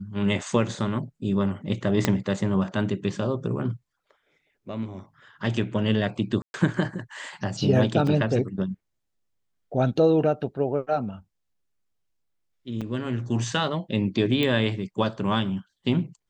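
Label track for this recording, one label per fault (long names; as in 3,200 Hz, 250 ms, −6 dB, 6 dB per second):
2.050000	2.050000	click −6 dBFS
6.420000	6.540000	drop-out 121 ms
8.070000	8.070000	drop-out 3.5 ms
12.810000	12.820000	drop-out 5.9 ms
14.430000	14.430000	click −13 dBFS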